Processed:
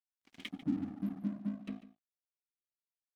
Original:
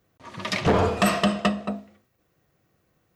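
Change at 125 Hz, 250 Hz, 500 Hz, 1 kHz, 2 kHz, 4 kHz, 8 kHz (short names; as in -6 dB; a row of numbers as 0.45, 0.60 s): -17.0 dB, -10.5 dB, -32.0 dB, -32.5 dB, -25.0 dB, under -20 dB, under -30 dB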